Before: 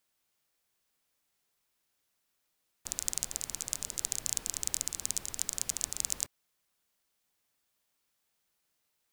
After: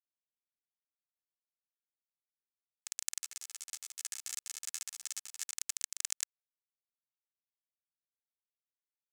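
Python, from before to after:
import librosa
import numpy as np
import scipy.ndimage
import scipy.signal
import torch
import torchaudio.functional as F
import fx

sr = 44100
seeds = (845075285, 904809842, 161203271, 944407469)

y = fx.ladder_highpass(x, sr, hz=1600.0, resonance_pct=85)
y = y + 0.75 * np.pad(y, (int(2.3 * sr / 1000.0), 0))[:len(y)]
y = np.sign(y) * np.maximum(np.abs(y) - 10.0 ** (-46.0 / 20.0), 0.0)
y = fx.ensemble(y, sr, at=(3.18, 5.51))
y = F.gain(torch.from_numpy(y), 7.0).numpy()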